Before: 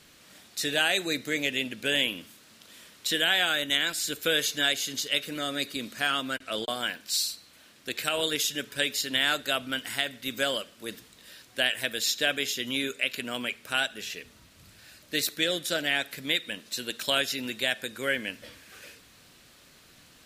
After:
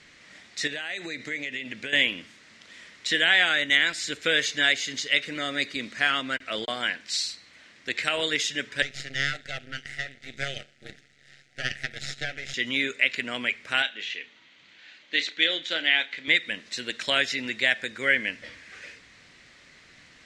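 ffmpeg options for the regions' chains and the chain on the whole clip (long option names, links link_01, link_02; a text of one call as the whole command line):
ffmpeg -i in.wav -filter_complex "[0:a]asettb=1/sr,asplit=3[link_01][link_02][link_03];[link_01]atrim=end=0.674[link_04];[link_02]atrim=start=0.67:end=1.93,asetpts=PTS-STARTPTS,afade=type=in:duration=0.004:curve=qsin,afade=type=out:start_time=1.256:duration=0.004:curve=qsin,highpass=53,acompressor=threshold=-32dB:ratio=10:attack=3.2:release=140:knee=1:detection=peak[link_05];[link_03]atrim=start=1.926[link_06];[link_04][link_05]acrossfade=duration=0.004:curve1=hsin:curve2=qsin[link_07];[link_07][link_06]acrossfade=duration=0.004:curve1=qsin:curve2=hsin,asettb=1/sr,asplit=3[link_08][link_09][link_10];[link_08]atrim=end=8.824[link_11];[link_09]atrim=start=8.82:end=12.54,asetpts=PTS-STARTPTS,afade=type=in:duration=0.004:curve=qsin,afade=type=out:start_time=3.716:duration=0.004:curve=qsin,aeval=exprs='max(val(0),0)':channel_layout=same,tremolo=f=140:d=0.889,asuperstop=centerf=1000:order=12:qfactor=2.1[link_12];[link_10]atrim=start=12.536[link_13];[link_11][link_12]acrossfade=duration=0.004:curve1=hsin:curve2=qsin[link_14];[link_14][link_13]acrossfade=duration=0.004:curve1=qsin:curve2=hsin,asettb=1/sr,asplit=3[link_15][link_16][link_17];[link_15]atrim=end=13.824[link_18];[link_16]atrim=start=13.82:end=16.28,asetpts=PTS-STARTPTS,afade=type=in:duration=0.004:curve=qsin,afade=type=out:start_time=2.456:duration=0.004:curve=qsin,highpass=330,equalizer=frequency=420:width_type=q:width=4:gain=-5,equalizer=frequency=630:width_type=q:width=4:gain=-6,equalizer=frequency=1200:width_type=q:width=4:gain=-4,equalizer=frequency=1800:width_type=q:width=4:gain=-4,equalizer=frequency=3200:width_type=q:width=4:gain=6,equalizer=frequency=5200:width_type=q:width=4:gain=-9,lowpass=frequency=5800:width=0.5412,lowpass=frequency=5800:width=1.3066,asplit=2[link_19][link_20];[link_20]adelay=31,volume=-12dB[link_21];[link_19][link_21]amix=inputs=2:normalize=0,atrim=end_sample=108486[link_22];[link_17]atrim=start=16.276[link_23];[link_18][link_22]acrossfade=duration=0.004:curve1=hsin:curve2=qsin[link_24];[link_24][link_23]acrossfade=duration=0.004:curve1=qsin:curve2=hsin,lowpass=frequency=7200:width=0.5412,lowpass=frequency=7200:width=1.3066,equalizer=frequency=2000:width=3.1:gain=12" out.wav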